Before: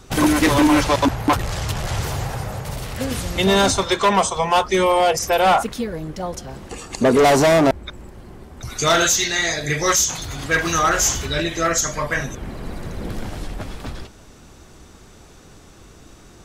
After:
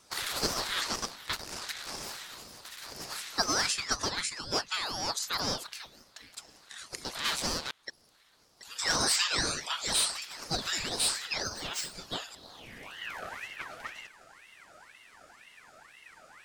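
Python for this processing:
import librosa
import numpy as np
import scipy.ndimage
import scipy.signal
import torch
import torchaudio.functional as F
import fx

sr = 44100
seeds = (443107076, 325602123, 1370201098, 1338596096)

y = fx.median_filter(x, sr, points=5, at=(11.43, 11.95))
y = fx.filter_sweep_highpass(y, sr, from_hz=2700.0, to_hz=300.0, start_s=12.24, end_s=13.28, q=2.9)
y = fx.ring_lfo(y, sr, carrier_hz=1700.0, swing_pct=45, hz=2.0)
y = y * librosa.db_to_amplitude(-8.0)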